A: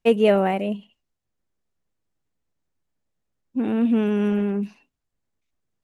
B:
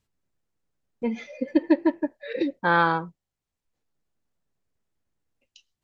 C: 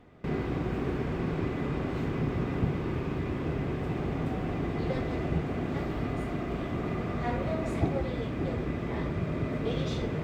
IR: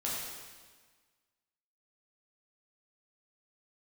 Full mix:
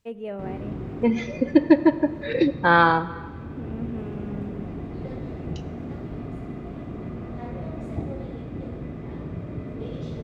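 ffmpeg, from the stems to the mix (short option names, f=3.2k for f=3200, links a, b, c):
-filter_complex "[0:a]highshelf=f=3.1k:g=-11,volume=-18dB,asplit=2[a][b];[b]volume=-21dB[c];[1:a]volume=2dB,asplit=3[d][e][f];[e]volume=-17dB[g];[2:a]tiltshelf=f=720:g=4.5,adelay=150,volume=-14dB,asplit=2[h][i];[i]volume=-3.5dB[j];[f]apad=whole_len=457849[k];[h][k]sidechaincompress=threshold=-34dB:ratio=8:attack=16:release=659[l];[3:a]atrim=start_sample=2205[m];[c][g][j]amix=inputs=3:normalize=0[n];[n][m]afir=irnorm=-1:irlink=0[o];[a][d][l][o]amix=inputs=4:normalize=0,dynaudnorm=f=220:g=3:m=3dB"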